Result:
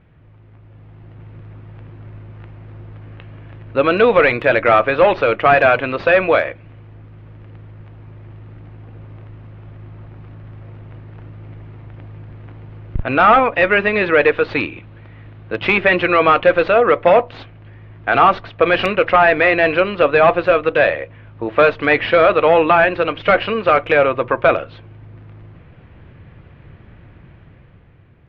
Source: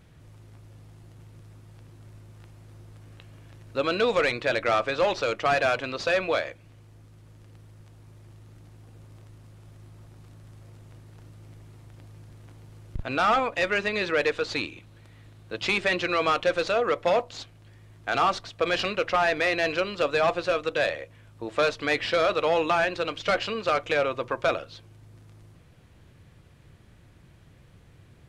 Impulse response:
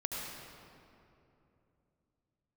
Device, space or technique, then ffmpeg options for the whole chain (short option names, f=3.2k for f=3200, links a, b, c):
action camera in a waterproof case: -af "lowpass=f=2.7k:w=0.5412,lowpass=f=2.7k:w=1.3066,dynaudnorm=f=220:g=9:m=9dB,volume=3dB" -ar 44100 -c:a aac -b:a 64k